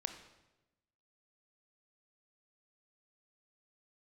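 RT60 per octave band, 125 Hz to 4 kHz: 1.3, 1.2, 1.1, 0.95, 0.90, 0.85 s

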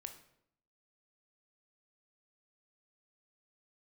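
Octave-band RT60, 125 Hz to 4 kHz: 0.85, 0.85, 0.75, 0.70, 0.60, 0.55 s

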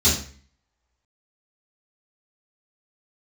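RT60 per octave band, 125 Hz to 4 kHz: 0.55, 0.55, 0.45, 0.45, 0.50, 0.40 s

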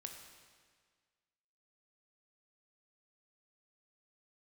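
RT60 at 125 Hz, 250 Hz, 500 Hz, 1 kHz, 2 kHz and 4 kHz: 1.7, 1.7, 1.7, 1.7, 1.7, 1.6 s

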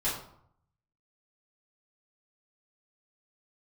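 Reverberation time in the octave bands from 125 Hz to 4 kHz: 1.0, 0.70, 0.65, 0.70, 0.50, 0.40 s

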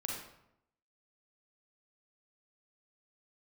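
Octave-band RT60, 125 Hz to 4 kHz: 0.90, 0.90, 0.80, 0.80, 0.65, 0.55 s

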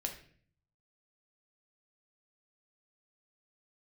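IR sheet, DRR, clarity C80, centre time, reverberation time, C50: 2.5 dB, 13.0 dB, 17 ms, 0.50 s, 9.0 dB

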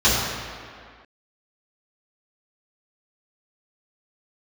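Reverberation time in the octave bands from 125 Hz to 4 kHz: 1.6, 1.9, 1.9, 2.2, 2.1, 1.5 s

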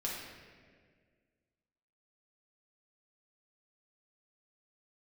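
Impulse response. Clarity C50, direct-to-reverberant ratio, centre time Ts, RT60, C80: 0.5 dB, -5.0 dB, 85 ms, 1.8 s, 2.5 dB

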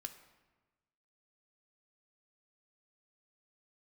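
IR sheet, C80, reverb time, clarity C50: 13.0 dB, 1.2 s, 11.0 dB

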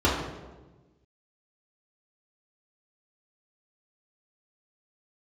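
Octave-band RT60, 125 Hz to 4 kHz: 1.6, 1.6, 1.4, 1.1, 0.90, 0.80 s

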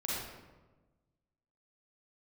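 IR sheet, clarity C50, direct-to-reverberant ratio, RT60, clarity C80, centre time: -3.5 dB, -6.5 dB, 1.2 s, 0.5 dB, 93 ms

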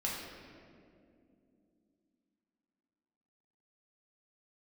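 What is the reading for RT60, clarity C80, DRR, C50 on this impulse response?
2.6 s, 2.5 dB, -5.0 dB, 0.5 dB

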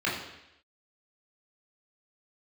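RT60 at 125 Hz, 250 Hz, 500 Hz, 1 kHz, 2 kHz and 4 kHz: 0.75, 0.80, 0.85, 0.85, 0.90, 0.90 s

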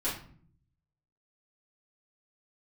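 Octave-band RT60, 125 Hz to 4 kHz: 1.1, 0.90, 0.55, 0.45, 0.40, 0.35 s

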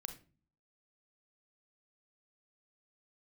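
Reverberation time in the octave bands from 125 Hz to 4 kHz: 0.70, 0.70, 0.40, 0.30, 0.30, 0.25 s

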